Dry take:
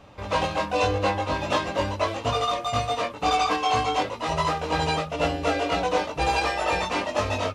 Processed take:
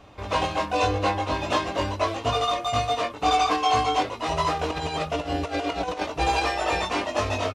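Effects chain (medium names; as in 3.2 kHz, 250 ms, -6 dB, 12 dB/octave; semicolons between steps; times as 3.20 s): comb 2.8 ms, depth 30%; 4.59–6.07 s: compressor with a negative ratio -27 dBFS, ratio -0.5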